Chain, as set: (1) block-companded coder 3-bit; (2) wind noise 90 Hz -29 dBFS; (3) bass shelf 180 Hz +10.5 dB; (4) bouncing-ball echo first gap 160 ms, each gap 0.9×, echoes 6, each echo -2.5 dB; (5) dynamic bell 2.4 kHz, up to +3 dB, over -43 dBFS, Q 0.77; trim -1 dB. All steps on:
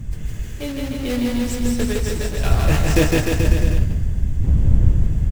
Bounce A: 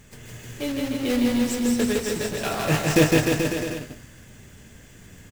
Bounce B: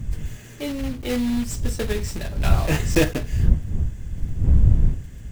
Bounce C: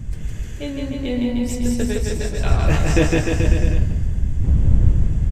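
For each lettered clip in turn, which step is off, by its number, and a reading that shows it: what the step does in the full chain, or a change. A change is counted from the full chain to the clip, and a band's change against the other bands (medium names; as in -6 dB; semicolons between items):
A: 2, 125 Hz band -10.5 dB; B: 4, loudness change -3.5 LU; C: 1, distortion -11 dB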